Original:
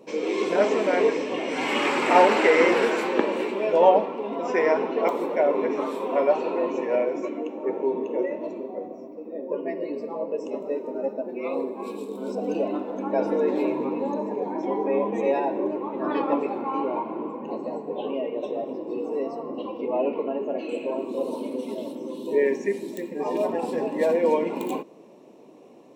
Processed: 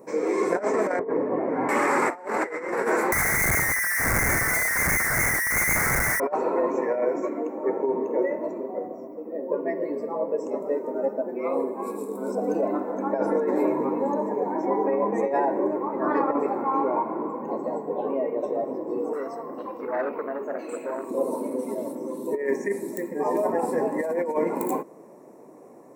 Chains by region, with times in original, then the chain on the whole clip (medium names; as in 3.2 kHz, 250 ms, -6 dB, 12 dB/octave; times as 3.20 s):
0.99–1.69 s: low-pass 1.1 kHz + bass shelf 190 Hz +7 dB
3.12–6.20 s: distance through air 250 m + frequency inversion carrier 2.5 kHz + Schmitt trigger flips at -32 dBFS
19.13–21.11 s: tilt shelf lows -5.5 dB, about 1.4 kHz + transformer saturation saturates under 850 Hz
whole clip: FFT filter 140 Hz 0 dB, 220 Hz -3 dB, 1.3 kHz +2 dB, 2 kHz +1 dB, 3 kHz -24 dB, 4.3 kHz -11 dB, 9 kHz +6 dB; compressor with a negative ratio -24 dBFS, ratio -0.5; trim +1.5 dB